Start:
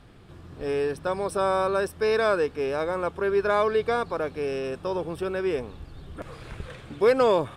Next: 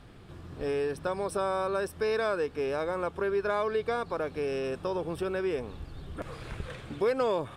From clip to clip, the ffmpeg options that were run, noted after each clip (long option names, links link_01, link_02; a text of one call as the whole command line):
ffmpeg -i in.wav -af "acompressor=threshold=-30dB:ratio=2" out.wav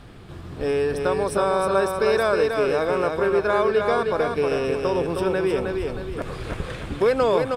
ffmpeg -i in.wav -af "aecho=1:1:314|628|942|1256|1570:0.596|0.244|0.1|0.0411|0.0168,volume=7.5dB" out.wav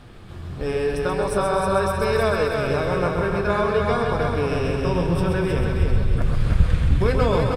ffmpeg -i in.wav -af "aecho=1:1:131|262|393|524|655|786|917:0.531|0.281|0.149|0.079|0.0419|0.0222|0.0118,flanger=delay=8.3:depth=9:regen=-49:speed=0.48:shape=sinusoidal,asubboost=boost=7:cutoff=150,volume=3.5dB" out.wav